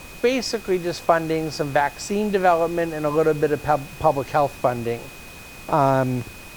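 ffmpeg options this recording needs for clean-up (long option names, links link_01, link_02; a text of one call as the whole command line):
ffmpeg -i in.wav -af "adeclick=threshold=4,bandreject=frequency=2500:width=30,afftdn=noise_reduction=26:noise_floor=-40" out.wav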